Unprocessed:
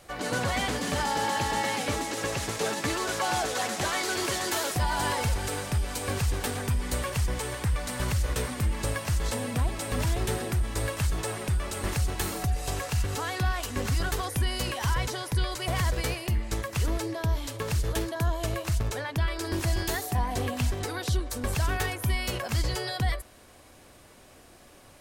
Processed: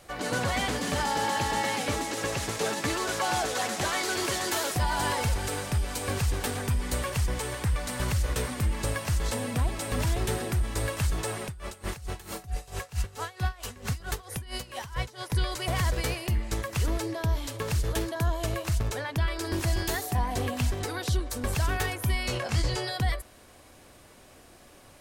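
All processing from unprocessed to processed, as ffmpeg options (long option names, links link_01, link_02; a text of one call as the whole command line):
ffmpeg -i in.wav -filter_complex "[0:a]asettb=1/sr,asplit=3[link_01][link_02][link_03];[link_01]atrim=end=11.454[link_04];[link_02]atrim=start=11.45:end=15.3,asetpts=PTS-STARTPTS,afade=type=in:duration=0.004:curve=qsin,afade=type=out:start_time=3.846:duration=0.004:curve=qsin,bandreject=frequency=290:width=5.9,aeval=exprs='val(0)*pow(10,-20*(0.5-0.5*cos(2*PI*4.5*n/s))/20)':channel_layout=same[link_05];[link_03]atrim=start=15.296[link_06];[link_04][link_05]acrossfade=duration=0.004:curve1=hsin:curve2=qsin[link_07];[link_07][link_06]acrossfade=duration=0.004:curve1=qsin:curve2=hsin,asettb=1/sr,asplit=3[link_08][link_09][link_10];[link_08]atrim=end=22.234[link_11];[link_09]atrim=start=22.23:end=22.85,asetpts=PTS-STARTPTS,afade=type=in:duration=0.004:curve=qsin,afade=type=out:start_time=0.616:duration=0.004:curve=qsin,lowpass=9200,asplit=2[link_12][link_13];[link_13]adelay=24,volume=-6.5dB[link_14];[link_12][link_14]amix=inputs=2:normalize=0,atrim=end_sample=27342[link_15];[link_10]atrim=start=22.846[link_16];[link_11][link_15]acrossfade=duration=0.004:curve1=hsin:curve2=qsin[link_17];[link_17][link_16]acrossfade=duration=0.004:curve1=qsin:curve2=hsin" out.wav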